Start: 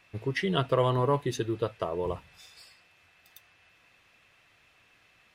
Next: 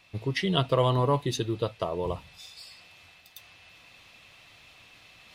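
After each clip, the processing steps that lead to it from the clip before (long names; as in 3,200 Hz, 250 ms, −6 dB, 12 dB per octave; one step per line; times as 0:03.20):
reversed playback
upward compression, threshold −48 dBFS
reversed playback
graphic EQ with 15 bands 400 Hz −4 dB, 1,600 Hz −7 dB, 4,000 Hz +5 dB
level +3 dB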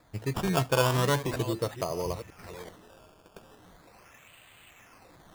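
delay that plays each chunk backwards 384 ms, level −12 dB
sample-and-hold swept by an LFO 15×, swing 100% 0.39 Hz
level −1.5 dB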